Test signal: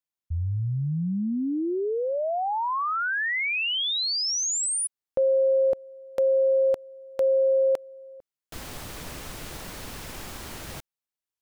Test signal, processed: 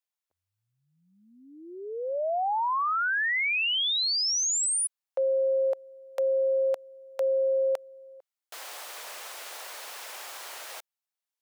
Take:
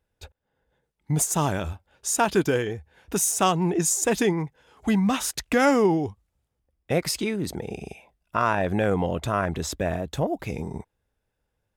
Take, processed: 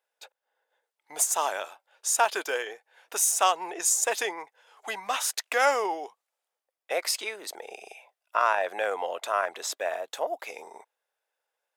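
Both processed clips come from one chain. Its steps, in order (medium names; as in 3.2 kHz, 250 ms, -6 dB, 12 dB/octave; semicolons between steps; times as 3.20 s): high-pass 560 Hz 24 dB/octave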